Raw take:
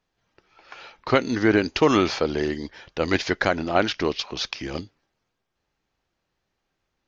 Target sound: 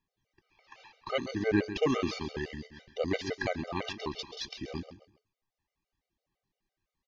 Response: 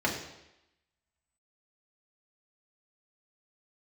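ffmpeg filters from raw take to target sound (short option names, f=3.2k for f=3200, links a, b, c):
-filter_complex "[0:a]asuperstop=centerf=1400:order=4:qfactor=4.7,aphaser=in_gain=1:out_gain=1:delay=1.2:decay=0.33:speed=0.63:type=triangular,asplit=2[a][b];[b]aecho=0:1:133|266|399:0.251|0.0829|0.0274[c];[a][c]amix=inputs=2:normalize=0,afftfilt=real='re*gt(sin(2*PI*5.9*pts/sr)*(1-2*mod(floor(b*sr/1024/390),2)),0)':imag='im*gt(sin(2*PI*5.9*pts/sr)*(1-2*mod(floor(b*sr/1024/390),2)),0)':win_size=1024:overlap=0.75,volume=-7.5dB"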